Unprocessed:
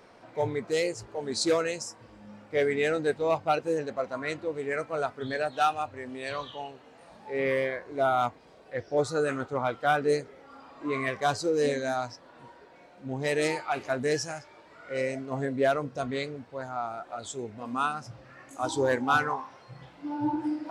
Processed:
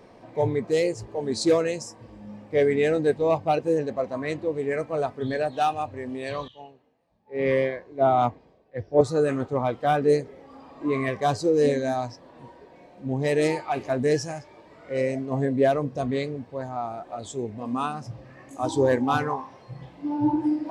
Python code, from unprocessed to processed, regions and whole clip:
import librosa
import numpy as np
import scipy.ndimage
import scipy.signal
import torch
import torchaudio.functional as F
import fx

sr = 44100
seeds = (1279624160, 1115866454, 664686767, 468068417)

y = fx.chain(x, sr, fx.lowpass(hz=7800.0, slope=12),
    fx.high_shelf(hz=4900.0, db=-5.5),
    fx.band_widen(depth_pct=100), at=(6.48, 9.01))
y = fx.tilt_shelf(y, sr, db=4.5, hz=690.0)
y = fx.notch(y, sr, hz=1400.0, q=5.5)
y = F.gain(torch.from_numpy(y), 3.5).numpy()